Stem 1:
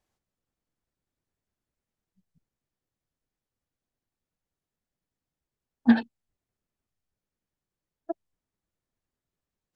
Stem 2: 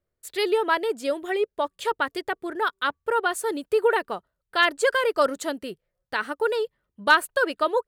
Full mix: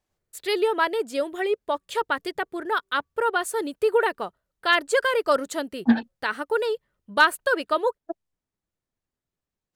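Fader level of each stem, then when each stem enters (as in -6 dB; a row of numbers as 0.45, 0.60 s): 0.0, 0.0 dB; 0.00, 0.10 s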